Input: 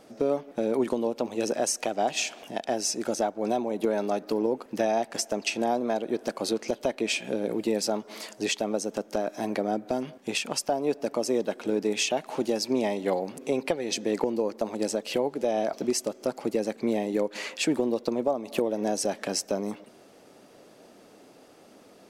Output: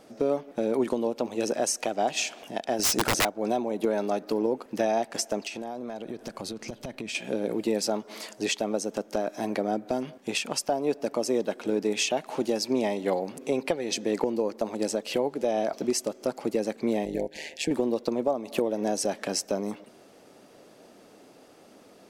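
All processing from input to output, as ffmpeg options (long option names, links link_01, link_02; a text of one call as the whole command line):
ffmpeg -i in.wav -filter_complex "[0:a]asettb=1/sr,asplit=3[link_01][link_02][link_03];[link_01]atrim=end=2.794[link_04];[link_02]atrim=start=2.79:end=3.25,asetpts=PTS-STARTPTS,afade=type=in:duration=0.004:curve=qsin,afade=type=out:start_time=0.456:duration=0.004:curve=qsin,lowshelf=frequency=160:gain=5.5,acontrast=32,aeval=exprs='(mod(6.68*val(0)+1,2)-1)/6.68':channel_layout=same[link_05];[link_03]atrim=start=3.246[link_06];[link_04][link_05]acrossfade=duration=0.004:curve1=hsin:curve2=qsin[link_07];[link_07][link_06]acrossfade=duration=0.004:curve1=qsin:curve2=hsin,asettb=1/sr,asplit=3[link_08][link_09][link_10];[link_08]atrim=end=5.454[link_11];[link_09]atrim=start=5.45:end=7.15,asetpts=PTS-STARTPTS,afade=type=in:duration=0.004:curve=qsin,afade=type=out:start_time=1.696:duration=0.004:curve=qsin,asubboost=boost=10.5:cutoff=180,acompressor=threshold=-31dB:ratio=8:attack=3.2:release=140:knee=1:detection=peak,aeval=exprs='0.0631*(abs(mod(val(0)/0.0631+3,4)-2)-1)':channel_layout=same[link_12];[link_10]atrim=start=7.146[link_13];[link_11][link_12]acrossfade=duration=0.004:curve1=hsin:curve2=qsin[link_14];[link_14][link_13]acrossfade=duration=0.004:curve1=qsin:curve2=hsin,asettb=1/sr,asplit=3[link_15][link_16][link_17];[link_15]atrim=end=17.054[link_18];[link_16]atrim=start=17.05:end=17.71,asetpts=PTS-STARTPTS,afade=type=in:duration=0.004:curve=qsin,afade=type=out:start_time=0.656:duration=0.004:curve=qsin,tremolo=f=150:d=0.788,asuperstop=centerf=1200:order=8:qfactor=1.7[link_19];[link_17]atrim=start=17.706[link_20];[link_18][link_19]acrossfade=duration=0.004:curve1=hsin:curve2=qsin[link_21];[link_21][link_20]acrossfade=duration=0.004:curve1=qsin:curve2=hsin" out.wav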